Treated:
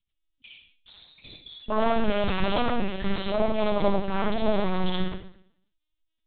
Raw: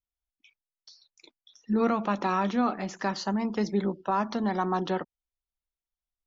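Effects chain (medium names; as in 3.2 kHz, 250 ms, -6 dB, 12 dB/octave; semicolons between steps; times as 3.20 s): high-order bell 840 Hz -15.5 dB 2.8 oct; sine folder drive 13 dB, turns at -18.5 dBFS; modulation noise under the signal 16 dB; reverberation RT60 0.65 s, pre-delay 49 ms, DRR -2.5 dB; LPC vocoder at 8 kHz pitch kept; trim -4 dB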